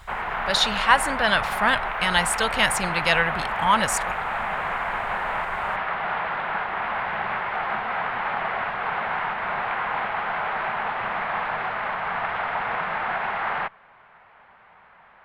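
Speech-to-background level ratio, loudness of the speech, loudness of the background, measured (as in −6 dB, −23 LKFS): 4.5 dB, −22.0 LKFS, −26.5 LKFS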